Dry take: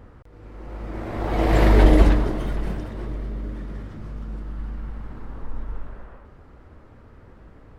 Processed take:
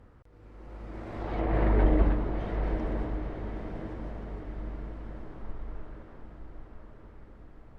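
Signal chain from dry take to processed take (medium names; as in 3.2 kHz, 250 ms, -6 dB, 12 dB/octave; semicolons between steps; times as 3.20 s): low-pass that closes with the level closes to 1.9 kHz, closed at -16 dBFS; on a send: echo that smears into a reverb 1000 ms, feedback 52%, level -7 dB; on the sum: trim -9 dB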